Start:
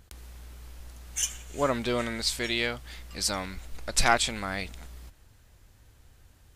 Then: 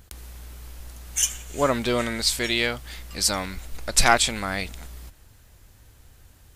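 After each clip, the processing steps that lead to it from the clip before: treble shelf 9.4 kHz +6.5 dB; trim +4.5 dB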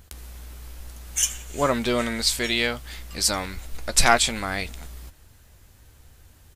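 doubling 13 ms -12 dB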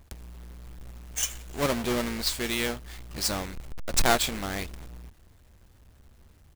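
square wave that keeps the level; trim -9 dB

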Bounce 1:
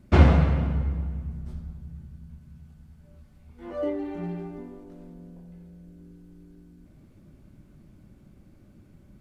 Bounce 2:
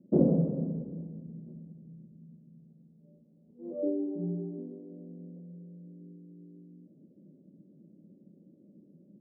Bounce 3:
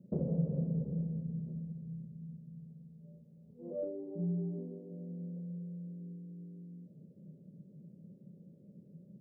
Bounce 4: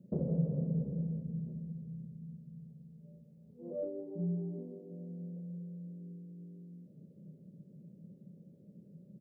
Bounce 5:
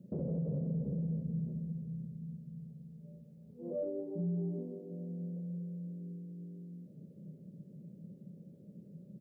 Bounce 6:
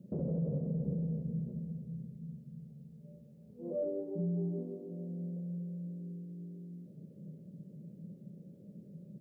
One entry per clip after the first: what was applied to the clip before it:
Chebyshev band-pass 170–540 Hz, order 3
compression 4:1, threshold -35 dBFS, peak gain reduction 14.5 dB; FFT filter 150 Hz 0 dB, 310 Hz -19 dB, 440 Hz -6 dB, 720 Hz -10 dB; trim +9 dB
delay 169 ms -13.5 dB
peak limiter -32 dBFS, peak gain reduction 10 dB; trim +3 dB
reverberation, pre-delay 3 ms, DRR 11 dB; trim +1 dB

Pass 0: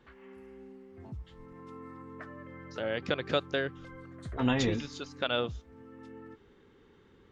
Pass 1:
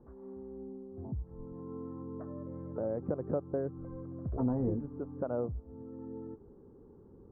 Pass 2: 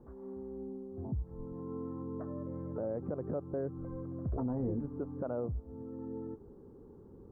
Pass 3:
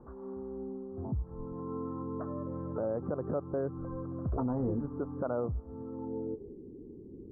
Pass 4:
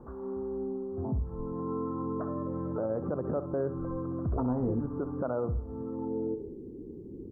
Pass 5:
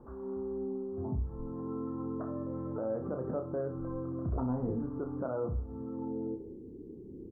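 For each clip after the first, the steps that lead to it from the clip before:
Bessel low-pass 600 Hz, order 6; compression 2:1, threshold -40 dBFS, peak gain reduction 9 dB; trim +6 dB
peak limiter -29 dBFS, peak gain reduction 9.5 dB; trim +2 dB
low-pass sweep 1.3 kHz -> 330 Hz, 5.85–6.58 s; trim +2 dB
in parallel at +0.5 dB: peak limiter -31 dBFS, peak gain reduction 8.5 dB; on the sum: feedback delay 64 ms, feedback 35%, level -11.5 dB; trim -2 dB
doubling 31 ms -6 dB; trim -4.5 dB

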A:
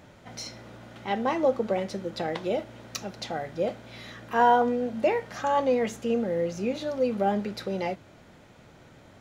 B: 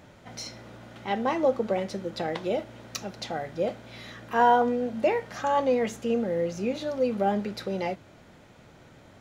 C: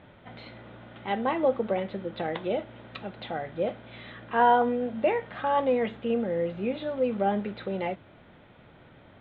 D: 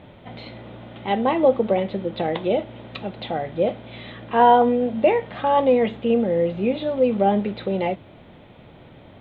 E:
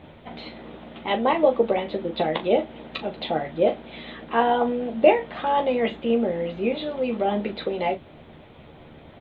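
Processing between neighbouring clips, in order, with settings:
no audible change
elliptic low-pass 3.6 kHz, stop band 40 dB
peaking EQ 1.5 kHz -8 dB 0.8 oct; trim +8 dB
harmonic-percussive split harmonic -9 dB; on a send: early reflections 13 ms -6.5 dB, 39 ms -11.5 dB; on the sum: trim +2.5 dB

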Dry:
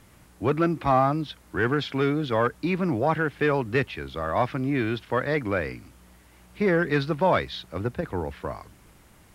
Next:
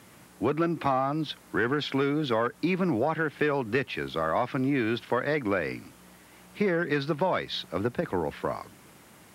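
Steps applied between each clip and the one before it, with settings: high-pass 150 Hz 12 dB/octave; compression 6:1, threshold -26 dBFS, peak gain reduction 10 dB; trim +3.5 dB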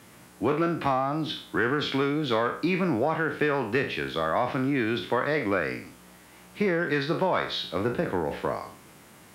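spectral sustain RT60 0.47 s

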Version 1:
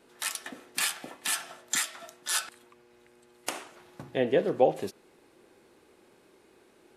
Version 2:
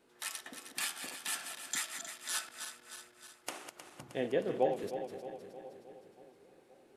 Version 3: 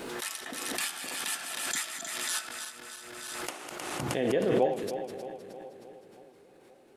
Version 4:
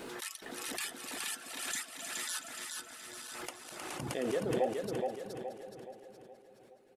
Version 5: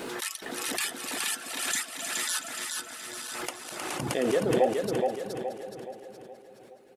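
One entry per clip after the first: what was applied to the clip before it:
backward echo that repeats 156 ms, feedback 74%, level -8.5 dB; bucket-brigade echo 522 ms, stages 4096, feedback 63%, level -21 dB; trim -8 dB
swell ahead of each attack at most 26 dB/s; trim +3 dB
reverb removal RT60 1.8 s; on a send: feedback delay 421 ms, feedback 45%, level -4 dB; on the sum: trim -5 dB
bass shelf 66 Hz -7.5 dB; trim +8 dB

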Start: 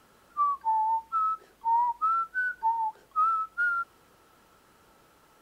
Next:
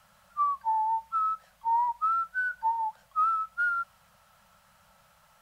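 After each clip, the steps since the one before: elliptic band-stop 200–570 Hz, stop band 50 dB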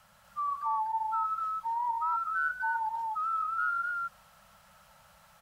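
peak limiter -28 dBFS, peak gain reduction 8.5 dB; on a send: loudspeakers at several distances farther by 32 m -11 dB, 85 m -2 dB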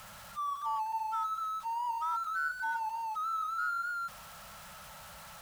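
jump at every zero crossing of -41 dBFS; peaking EQ 350 Hz -13.5 dB 0.4 oct; trim -4 dB

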